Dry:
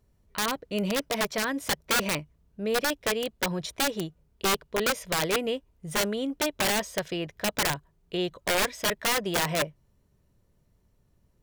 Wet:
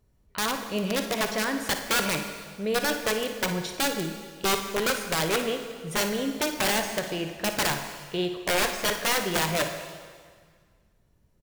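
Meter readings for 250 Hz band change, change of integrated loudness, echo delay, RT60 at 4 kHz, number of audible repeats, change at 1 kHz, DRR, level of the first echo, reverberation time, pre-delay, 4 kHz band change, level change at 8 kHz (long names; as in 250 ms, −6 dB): +1.5 dB, +1.0 dB, 56 ms, 1.7 s, 1, +1.5 dB, 5.0 dB, −12.5 dB, 1.7 s, 5 ms, +1.0 dB, +1.0 dB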